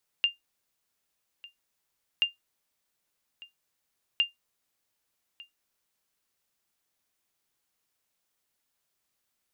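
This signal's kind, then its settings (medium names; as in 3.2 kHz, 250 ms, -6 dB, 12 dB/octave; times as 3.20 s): sonar ping 2.8 kHz, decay 0.15 s, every 1.98 s, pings 3, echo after 1.20 s, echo -22 dB -15.5 dBFS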